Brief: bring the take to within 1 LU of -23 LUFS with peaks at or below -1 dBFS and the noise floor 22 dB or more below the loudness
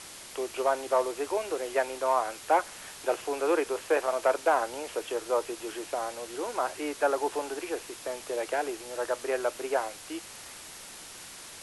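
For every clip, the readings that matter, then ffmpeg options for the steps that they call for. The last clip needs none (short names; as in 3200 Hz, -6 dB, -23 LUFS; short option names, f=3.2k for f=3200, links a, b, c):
noise floor -46 dBFS; noise floor target -53 dBFS; loudness -30.5 LUFS; peak -12.0 dBFS; loudness target -23.0 LUFS
-> -af "afftdn=nr=7:nf=-46"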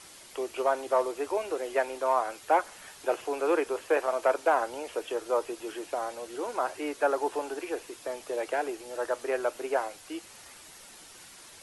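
noise floor -51 dBFS; noise floor target -53 dBFS
-> -af "afftdn=nr=6:nf=-51"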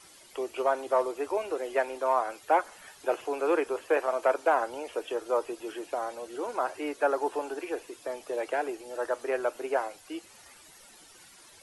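noise floor -54 dBFS; loudness -30.5 LUFS; peak -12.0 dBFS; loudness target -23.0 LUFS
-> -af "volume=7.5dB"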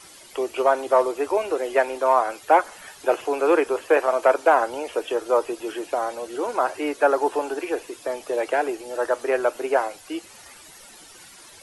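loudness -23.0 LUFS; peak -4.5 dBFS; noise floor -47 dBFS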